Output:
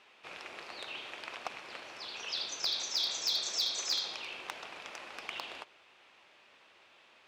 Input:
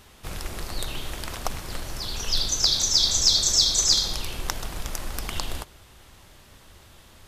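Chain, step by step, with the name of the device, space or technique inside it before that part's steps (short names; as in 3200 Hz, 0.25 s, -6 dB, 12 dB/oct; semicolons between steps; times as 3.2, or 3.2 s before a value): megaphone (BPF 460–3700 Hz; bell 2500 Hz +8 dB 0.4 oct; hard clip -17 dBFS, distortion -21 dB); gain -7 dB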